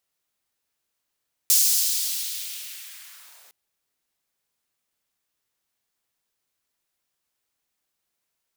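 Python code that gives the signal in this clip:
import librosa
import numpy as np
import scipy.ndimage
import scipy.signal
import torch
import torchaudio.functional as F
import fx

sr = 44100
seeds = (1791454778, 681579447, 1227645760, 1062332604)

y = fx.riser_noise(sr, seeds[0], length_s=2.01, colour='white', kind='highpass', start_hz=5800.0, end_hz=420.0, q=1.3, swell_db=-36.5, law='linear')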